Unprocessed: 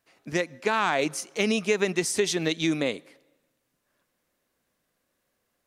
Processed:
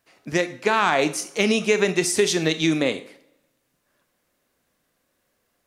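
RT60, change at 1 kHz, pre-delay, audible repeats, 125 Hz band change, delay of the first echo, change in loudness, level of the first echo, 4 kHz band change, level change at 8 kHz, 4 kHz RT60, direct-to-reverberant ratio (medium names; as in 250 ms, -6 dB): 0.45 s, +5.0 dB, 23 ms, no echo, +5.0 dB, no echo, +5.0 dB, no echo, +5.0 dB, +5.0 dB, 0.45 s, 10.5 dB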